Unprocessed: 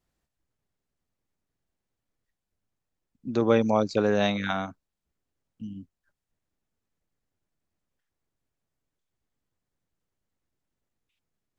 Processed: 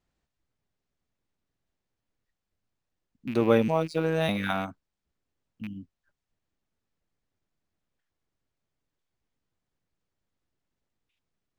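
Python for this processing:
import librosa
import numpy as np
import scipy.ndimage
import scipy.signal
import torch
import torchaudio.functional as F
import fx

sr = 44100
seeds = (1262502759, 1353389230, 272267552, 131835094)

y = fx.rattle_buzz(x, sr, strikes_db=-33.0, level_db=-30.0)
y = fx.robotise(y, sr, hz=161.0, at=(3.68, 4.29))
y = np.interp(np.arange(len(y)), np.arange(len(y))[::3], y[::3])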